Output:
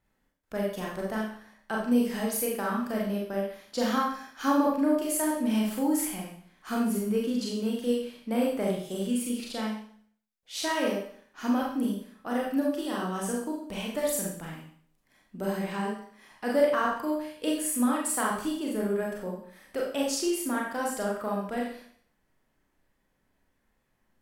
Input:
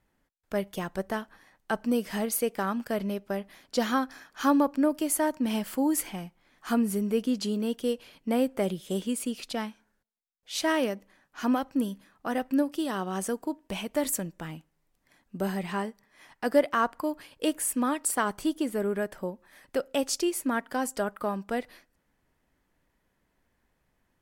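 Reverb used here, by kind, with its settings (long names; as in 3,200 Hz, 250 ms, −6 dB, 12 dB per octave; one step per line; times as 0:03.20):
four-comb reverb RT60 0.55 s, combs from 29 ms, DRR −3 dB
level −5 dB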